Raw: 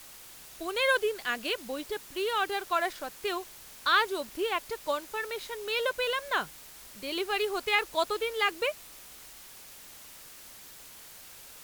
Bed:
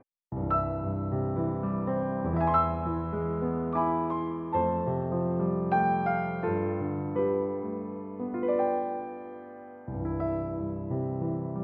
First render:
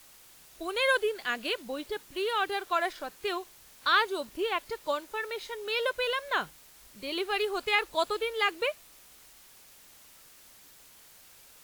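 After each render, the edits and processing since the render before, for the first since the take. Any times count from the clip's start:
noise reduction from a noise print 6 dB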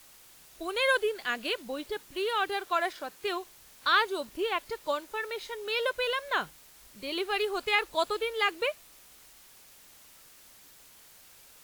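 0:02.66–0:03.26: high-pass filter 81 Hz 6 dB per octave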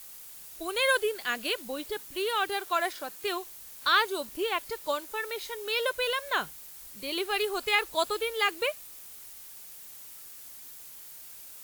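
high-shelf EQ 7,400 Hz +12 dB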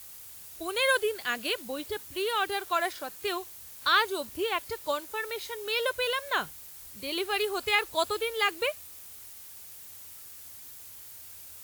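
high-pass filter 43 Hz
parametric band 84 Hz +15 dB 0.56 octaves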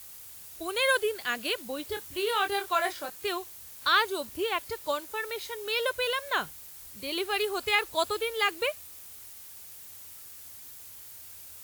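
0:01.86–0:03.10: double-tracking delay 25 ms −6.5 dB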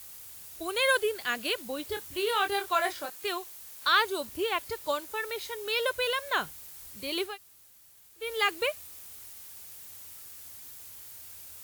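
0:03.06–0:03.99: low-shelf EQ 210 Hz −9.5 dB
0:07.30–0:08.24: fill with room tone, crossfade 0.16 s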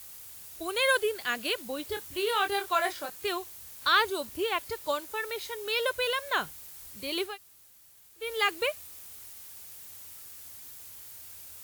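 0:03.09–0:04.10: low-shelf EQ 190 Hz +11 dB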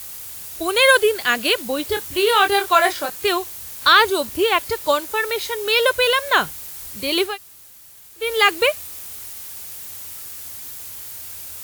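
level +12 dB
brickwall limiter −2 dBFS, peak gain reduction 2.5 dB

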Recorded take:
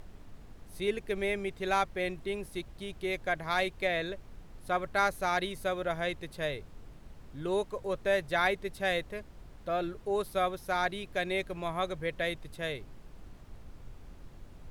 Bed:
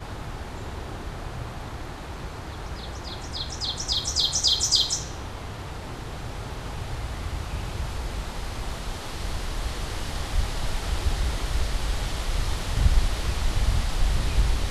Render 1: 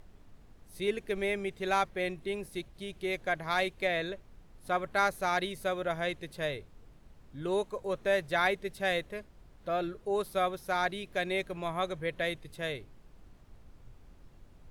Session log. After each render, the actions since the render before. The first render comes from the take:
noise reduction from a noise print 6 dB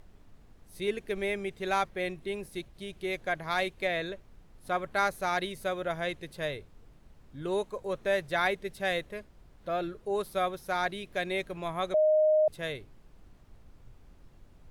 0:11.94–0:12.48: beep over 618 Hz −20 dBFS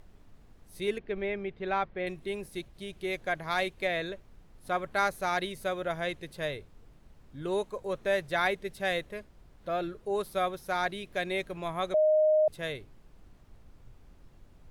0:00.98–0:02.07: high-frequency loss of the air 290 metres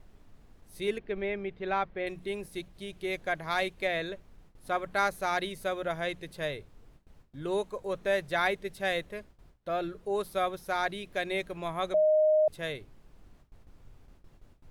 noise gate with hold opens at −46 dBFS
mains-hum notches 60/120/180 Hz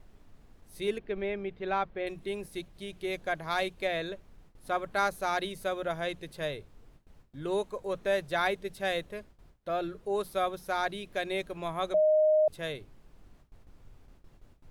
dynamic equaliser 2,000 Hz, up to −4 dB, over −48 dBFS, Q 3.1
mains-hum notches 60/120/180 Hz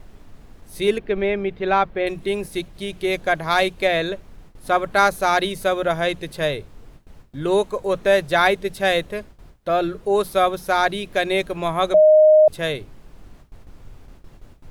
level +12 dB

